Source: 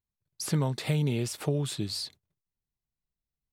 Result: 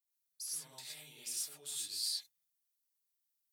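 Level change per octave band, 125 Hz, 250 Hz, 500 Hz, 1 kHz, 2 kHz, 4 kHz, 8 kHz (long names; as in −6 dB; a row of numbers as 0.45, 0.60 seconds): −39.5, −36.0, −29.5, −21.5, −15.0, −3.0, 0.0 decibels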